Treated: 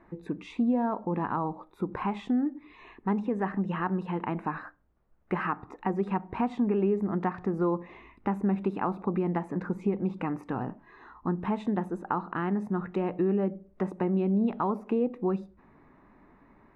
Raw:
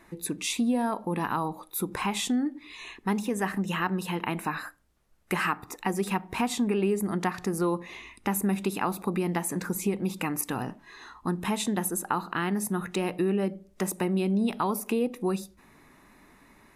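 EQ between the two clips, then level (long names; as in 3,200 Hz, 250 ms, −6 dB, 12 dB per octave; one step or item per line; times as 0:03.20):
low-pass filter 1,300 Hz 12 dB per octave
0.0 dB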